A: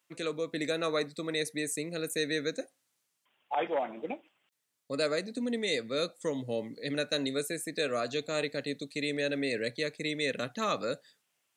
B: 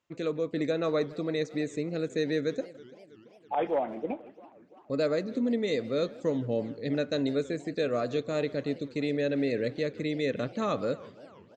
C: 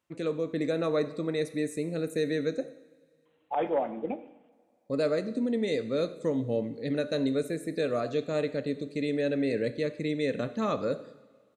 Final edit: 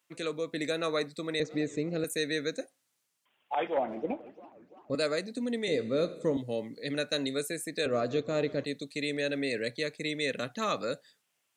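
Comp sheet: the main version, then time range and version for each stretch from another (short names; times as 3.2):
A
1.4–2.04 from B
3.77–4.95 from B
5.68–6.37 from C
7.86–8.65 from B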